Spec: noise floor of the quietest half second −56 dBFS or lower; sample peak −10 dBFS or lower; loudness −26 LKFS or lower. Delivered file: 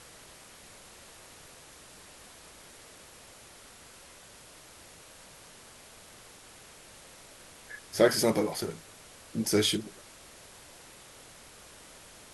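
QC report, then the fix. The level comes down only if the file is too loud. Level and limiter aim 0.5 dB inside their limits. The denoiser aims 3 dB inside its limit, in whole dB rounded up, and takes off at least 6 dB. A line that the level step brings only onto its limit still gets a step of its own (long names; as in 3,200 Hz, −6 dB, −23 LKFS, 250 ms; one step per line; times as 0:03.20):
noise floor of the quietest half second −52 dBFS: out of spec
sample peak −9.5 dBFS: out of spec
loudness −28.0 LKFS: in spec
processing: broadband denoise 7 dB, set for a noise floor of −52 dBFS
brickwall limiter −10.5 dBFS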